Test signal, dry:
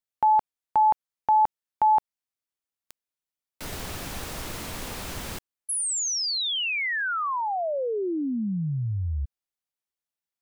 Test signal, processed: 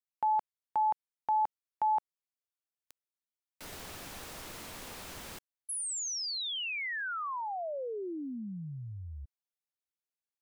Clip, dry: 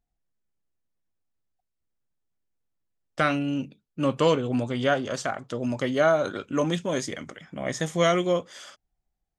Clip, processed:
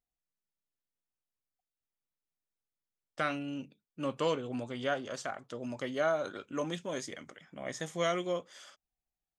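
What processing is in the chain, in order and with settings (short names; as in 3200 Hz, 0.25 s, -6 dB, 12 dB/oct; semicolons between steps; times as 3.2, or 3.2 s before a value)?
low shelf 200 Hz -7.5 dB; gain -8.5 dB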